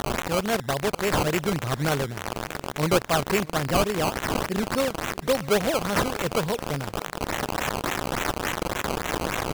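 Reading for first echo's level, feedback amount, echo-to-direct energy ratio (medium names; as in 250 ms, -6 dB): -23.0 dB, 57%, -21.5 dB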